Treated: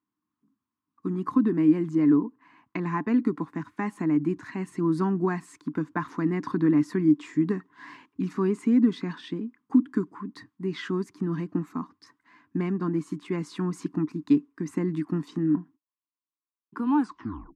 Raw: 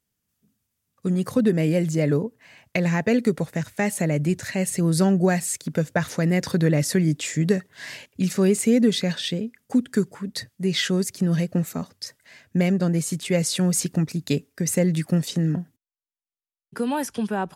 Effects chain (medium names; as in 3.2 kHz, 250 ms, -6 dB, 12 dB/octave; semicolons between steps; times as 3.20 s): tape stop on the ending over 0.59 s; two resonant band-passes 560 Hz, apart 1.8 oct; trim +9 dB